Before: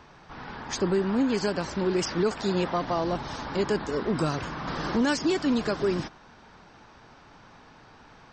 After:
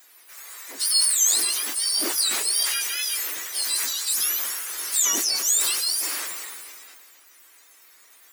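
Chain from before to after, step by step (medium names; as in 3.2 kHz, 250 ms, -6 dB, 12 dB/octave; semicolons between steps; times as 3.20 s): spectrum inverted on a logarithmic axis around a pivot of 1.3 kHz; on a send at -17.5 dB: reverberation RT60 0.85 s, pre-delay 6 ms; on the sum: harmony voices +3 st -6 dB, +12 st -14 dB; differentiator; decay stretcher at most 24 dB/s; trim +8.5 dB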